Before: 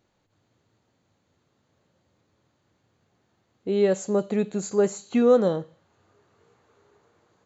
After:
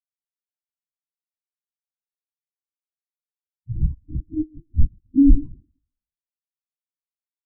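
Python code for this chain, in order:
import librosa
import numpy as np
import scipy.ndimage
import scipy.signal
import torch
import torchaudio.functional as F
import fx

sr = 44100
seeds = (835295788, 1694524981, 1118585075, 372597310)

p1 = fx.band_invert(x, sr, width_hz=500)
p2 = p1 + 0.74 * np.pad(p1, (int(7.2 * sr / 1000.0), 0))[:len(p1)]
p3 = fx.rider(p2, sr, range_db=10, speed_s=0.5)
p4 = p2 + (p3 * 10.0 ** (-2.0 / 20.0))
p5 = np.convolve(p4, np.full(49, 1.0 / 49))[:len(p4)]
p6 = p5 + fx.echo_feedback(p5, sr, ms=129, feedback_pct=58, wet_db=-14.5, dry=0)
p7 = fx.lpc_vocoder(p6, sr, seeds[0], excitation='whisper', order=16)
y = fx.spectral_expand(p7, sr, expansion=2.5)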